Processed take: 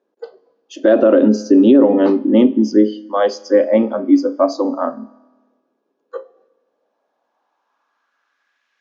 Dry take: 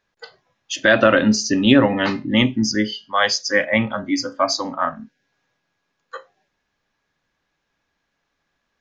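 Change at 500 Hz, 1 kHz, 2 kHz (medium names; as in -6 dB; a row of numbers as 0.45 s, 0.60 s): +7.0 dB, -1.5 dB, -12.5 dB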